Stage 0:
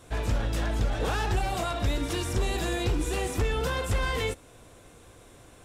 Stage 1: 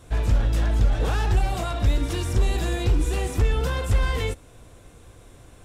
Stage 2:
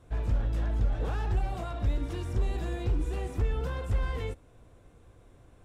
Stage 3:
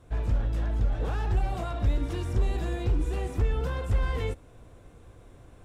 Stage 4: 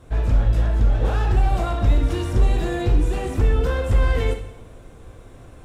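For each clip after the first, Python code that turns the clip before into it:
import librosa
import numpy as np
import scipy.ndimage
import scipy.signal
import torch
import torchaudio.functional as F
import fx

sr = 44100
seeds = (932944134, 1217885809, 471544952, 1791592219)

y1 = fx.low_shelf(x, sr, hz=130.0, db=9.5)
y2 = fx.high_shelf(y1, sr, hz=2600.0, db=-10.5)
y2 = F.gain(torch.from_numpy(y2), -7.5).numpy()
y3 = fx.rider(y2, sr, range_db=10, speed_s=0.5)
y3 = F.gain(torch.from_numpy(y3), 2.5).numpy()
y4 = fx.rev_plate(y3, sr, seeds[0], rt60_s=0.76, hf_ratio=1.0, predelay_ms=0, drr_db=4.5)
y4 = F.gain(torch.from_numpy(y4), 7.0).numpy()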